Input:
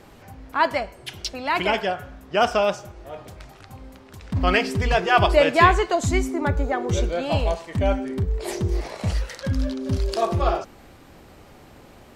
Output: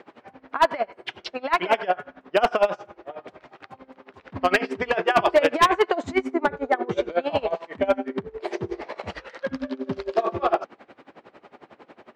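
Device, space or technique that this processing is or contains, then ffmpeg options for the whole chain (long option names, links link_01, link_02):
helicopter radio: -af "highpass=310,lowpass=2500,aeval=exprs='val(0)*pow(10,-22*(0.5-0.5*cos(2*PI*11*n/s))/20)':channel_layout=same,asoftclip=type=hard:threshold=-18dB,volume=7.5dB"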